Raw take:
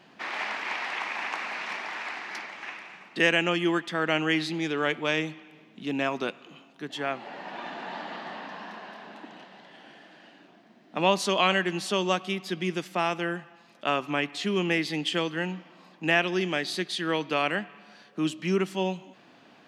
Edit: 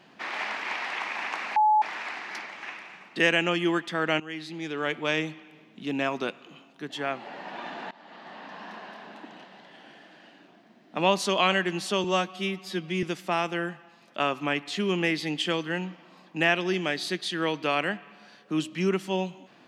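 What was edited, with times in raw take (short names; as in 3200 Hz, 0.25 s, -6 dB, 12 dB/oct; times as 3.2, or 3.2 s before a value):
1.56–1.82 bleep 855 Hz -17 dBFS
4.2–5.11 fade in, from -17 dB
7.91–8.75 fade in, from -21 dB
12.04–12.7 stretch 1.5×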